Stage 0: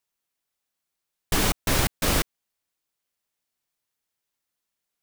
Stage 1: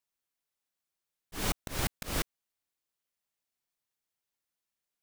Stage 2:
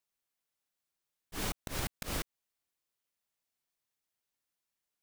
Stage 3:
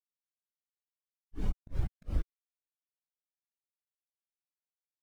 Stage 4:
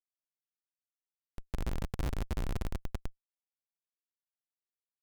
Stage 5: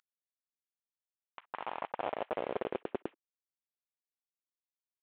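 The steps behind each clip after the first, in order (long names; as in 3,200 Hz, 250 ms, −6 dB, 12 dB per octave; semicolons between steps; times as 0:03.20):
volume swells 198 ms; level −6 dB
downward compressor, threshold −32 dBFS, peak gain reduction 7 dB
every bin expanded away from the loudest bin 2.5 to 1; level +3.5 dB
rectangular room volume 3,900 cubic metres, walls mixed, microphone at 4.1 metres; comparator with hysteresis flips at −31 dBFS; level −3 dB
variable-slope delta modulation 16 kbit/s; high-pass filter sweep 1,400 Hz → 140 Hz, 0:00.99–0:04.42; level +8 dB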